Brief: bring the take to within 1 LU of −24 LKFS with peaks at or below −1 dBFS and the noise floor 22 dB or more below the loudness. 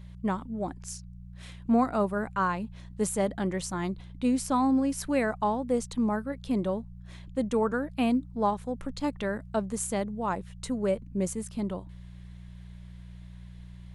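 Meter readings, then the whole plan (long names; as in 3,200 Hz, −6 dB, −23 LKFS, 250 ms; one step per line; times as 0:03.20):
mains hum 60 Hz; hum harmonics up to 180 Hz; level of the hum −42 dBFS; integrated loudness −30.0 LKFS; sample peak −13.0 dBFS; target loudness −24.0 LKFS
→ hum removal 60 Hz, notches 3
level +6 dB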